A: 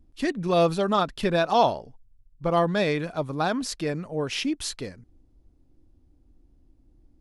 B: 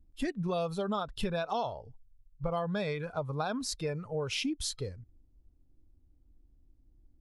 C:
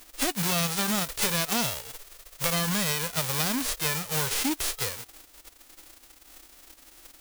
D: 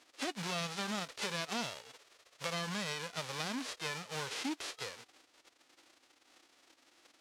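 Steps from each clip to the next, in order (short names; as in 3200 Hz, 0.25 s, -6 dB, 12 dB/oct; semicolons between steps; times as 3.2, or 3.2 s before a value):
spectral noise reduction 11 dB; low shelf 140 Hz +9 dB; compressor 6:1, threshold -29 dBFS, peak gain reduction 14 dB; gain -1 dB
spectral whitening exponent 0.1; in parallel at -9 dB: wrapped overs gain 29 dB; on the sum: gain +5 dB
BPF 190–5300 Hz; gain -8.5 dB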